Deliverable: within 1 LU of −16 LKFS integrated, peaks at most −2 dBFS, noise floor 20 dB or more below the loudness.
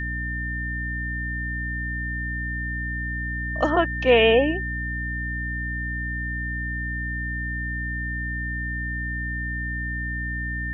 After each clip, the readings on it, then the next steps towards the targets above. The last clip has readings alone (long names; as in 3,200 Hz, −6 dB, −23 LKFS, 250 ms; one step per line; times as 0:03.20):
mains hum 60 Hz; hum harmonics up to 300 Hz; level of the hum −28 dBFS; interfering tone 1,800 Hz; level of the tone −29 dBFS; integrated loudness −26.0 LKFS; sample peak −4.5 dBFS; target loudness −16.0 LKFS
→ hum removal 60 Hz, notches 5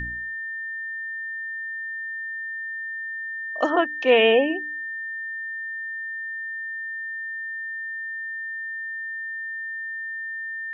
mains hum none found; interfering tone 1,800 Hz; level of the tone −29 dBFS
→ notch filter 1,800 Hz, Q 30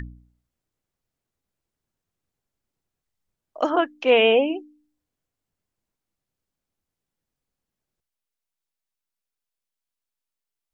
interfering tone none found; integrated loudness −20.0 LKFS; sample peak −5.0 dBFS; target loudness −16.0 LKFS
→ level +4 dB
brickwall limiter −2 dBFS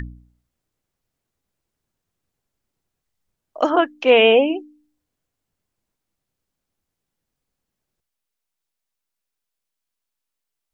integrated loudness −16.0 LKFS; sample peak −2.0 dBFS; background noise floor −82 dBFS